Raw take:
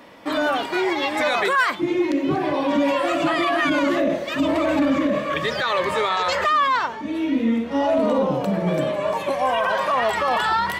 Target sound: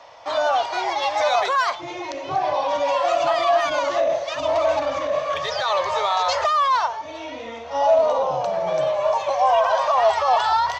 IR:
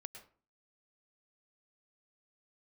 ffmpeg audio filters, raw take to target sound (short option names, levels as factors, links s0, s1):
-filter_complex "[0:a]firequalizer=gain_entry='entry(120,0);entry(210,-22);entry(460,-2);entry(680,11);entry(1100,6);entry(1700,0);entry(6200,11);entry(9200,-18)':delay=0.05:min_phase=1,acrossover=split=300|1500|2400[s0][s1][s2][s3];[s2]asoftclip=type=tanh:threshold=0.0237[s4];[s0][s1][s4][s3]amix=inputs=4:normalize=0,volume=0.631"